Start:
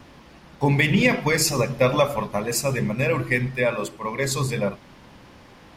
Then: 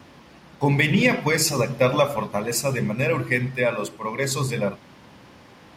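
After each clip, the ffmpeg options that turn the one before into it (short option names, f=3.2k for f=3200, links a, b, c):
-af "highpass=79"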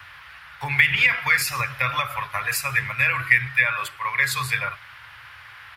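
-filter_complex "[0:a]acrossover=split=340[a][b];[b]acompressor=threshold=-23dB:ratio=6[c];[a][c]amix=inputs=2:normalize=0,firequalizer=gain_entry='entry(110,0);entry(190,-28);entry(730,-6);entry(1400,14);entry(6400,-5);entry(11000,6)':delay=0.05:min_phase=1"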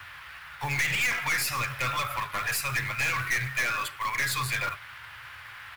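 -af "aeval=exprs='(tanh(15.8*val(0)+0.25)-tanh(0.25))/15.8':c=same,acrusher=bits=4:mode=log:mix=0:aa=0.000001"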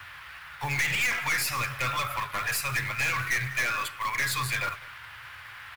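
-af "aecho=1:1:199:0.0944"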